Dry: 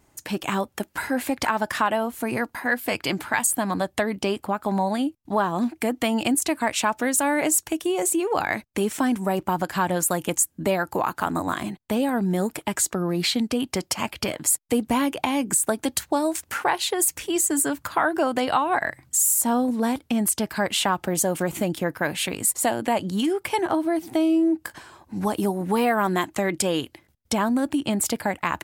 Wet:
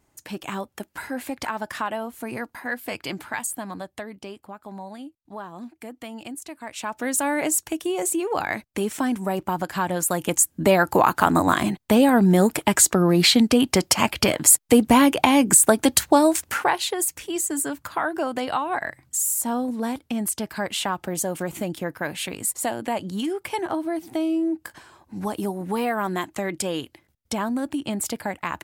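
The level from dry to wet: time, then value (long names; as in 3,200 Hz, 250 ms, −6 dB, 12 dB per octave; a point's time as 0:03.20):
0:03.26 −5.5 dB
0:04.39 −14 dB
0:06.61 −14 dB
0:07.12 −1.5 dB
0:09.96 −1.5 dB
0:10.86 +7 dB
0:16.20 +7 dB
0:17.11 −3.5 dB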